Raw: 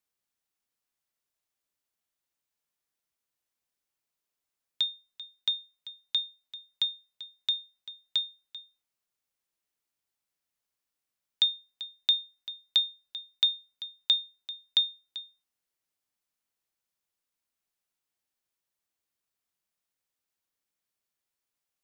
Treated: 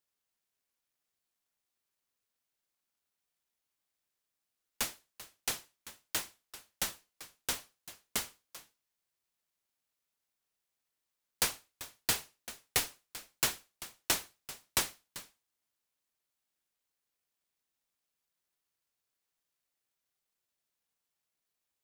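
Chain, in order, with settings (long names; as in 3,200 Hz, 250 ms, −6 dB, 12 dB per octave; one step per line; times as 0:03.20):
first difference
short delay modulated by noise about 1,900 Hz, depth 0.16 ms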